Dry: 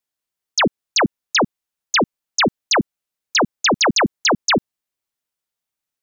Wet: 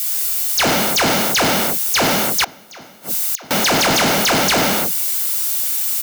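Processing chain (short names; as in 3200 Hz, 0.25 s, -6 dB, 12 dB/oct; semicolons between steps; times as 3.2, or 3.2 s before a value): switching spikes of -25 dBFS; non-linear reverb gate 0.34 s falling, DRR -2 dB; 2.44–3.51 flipped gate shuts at -10 dBFS, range -32 dB; comb 1.4 ms, depth 34%; soft clip -21 dBFS, distortion -5 dB; gain +7.5 dB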